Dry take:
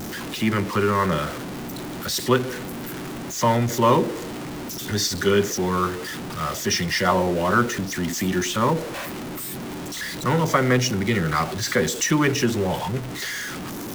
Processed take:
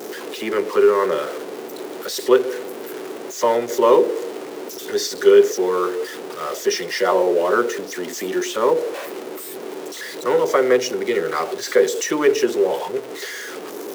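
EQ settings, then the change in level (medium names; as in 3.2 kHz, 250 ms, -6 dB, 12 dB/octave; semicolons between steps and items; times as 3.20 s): resonant high-pass 430 Hz, resonance Q 4.9; -2.0 dB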